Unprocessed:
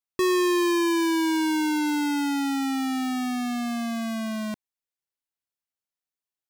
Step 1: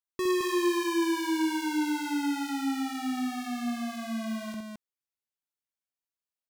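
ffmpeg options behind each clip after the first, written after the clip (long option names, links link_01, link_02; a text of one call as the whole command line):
ffmpeg -i in.wav -af "aecho=1:1:63|216:0.631|0.668,volume=-7.5dB" out.wav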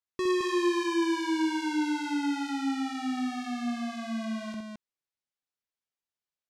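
ffmpeg -i in.wav -af "lowpass=6700" out.wav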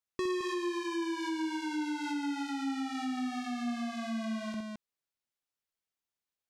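ffmpeg -i in.wav -af "acompressor=threshold=-32dB:ratio=6" out.wav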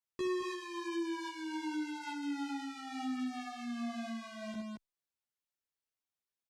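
ffmpeg -i in.wav -filter_complex "[0:a]asplit=2[link_01][link_02];[link_02]adelay=11.8,afreqshift=0.88[link_03];[link_01][link_03]amix=inputs=2:normalize=1,volume=-1.5dB" out.wav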